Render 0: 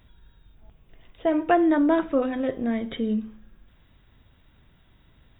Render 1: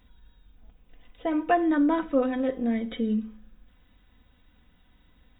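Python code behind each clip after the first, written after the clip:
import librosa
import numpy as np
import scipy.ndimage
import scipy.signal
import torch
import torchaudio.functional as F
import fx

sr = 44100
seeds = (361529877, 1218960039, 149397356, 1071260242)

y = x + 0.61 * np.pad(x, (int(4.0 * sr / 1000.0), 0))[:len(x)]
y = y * 10.0 ** (-4.0 / 20.0)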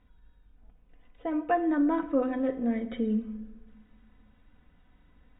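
y = fx.rider(x, sr, range_db=10, speed_s=2.0)
y = scipy.signal.sosfilt(scipy.signal.butter(2, 2200.0, 'lowpass', fs=sr, output='sos'), y)
y = fx.room_shoebox(y, sr, seeds[0], volume_m3=1100.0, walls='mixed', distance_m=0.35)
y = y * 10.0 ** (-2.5 / 20.0)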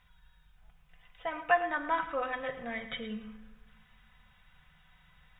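y = fx.curve_eq(x, sr, hz=(100.0, 160.0, 260.0, 790.0, 1300.0, 2900.0), db=(0, 8, -18, 6, 10, 14))
y = y + 10.0 ** (-13.0 / 20.0) * np.pad(y, (int(110 * sr / 1000.0), 0))[:len(y)]
y = y * 10.0 ** (-4.0 / 20.0)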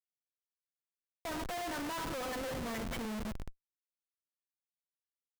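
y = fx.high_shelf(x, sr, hz=2000.0, db=-10.0)
y = fx.schmitt(y, sr, flips_db=-44.5)
y = y * 10.0 ** (1.0 / 20.0)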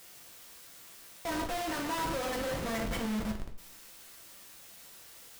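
y = x + 0.5 * 10.0 ** (-51.5 / 20.0) * np.sign(x)
y = fx.leveller(y, sr, passes=3)
y = fx.rev_double_slope(y, sr, seeds[1], early_s=0.44, late_s=1.9, knee_db=-27, drr_db=2.0)
y = y * 10.0 ** (-2.5 / 20.0)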